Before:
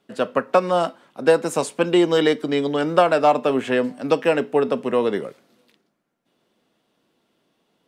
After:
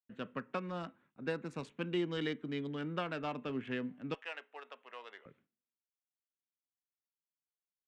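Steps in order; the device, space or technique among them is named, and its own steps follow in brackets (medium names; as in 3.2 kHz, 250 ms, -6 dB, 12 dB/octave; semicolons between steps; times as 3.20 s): local Wiener filter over 9 samples; hearing-loss simulation (low-pass 3.2 kHz 12 dB/octave; expander -44 dBFS); 0.68–1.64 s: band-stop 3.1 kHz, Q 7.3; 4.14–5.26 s: Chebyshev high-pass 680 Hz, order 3; amplifier tone stack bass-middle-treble 6-0-2; trim +5 dB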